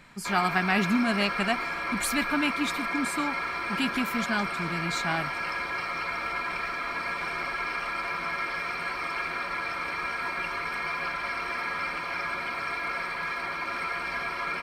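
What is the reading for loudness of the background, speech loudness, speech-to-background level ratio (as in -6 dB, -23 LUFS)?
-30.5 LUFS, -29.0 LUFS, 1.5 dB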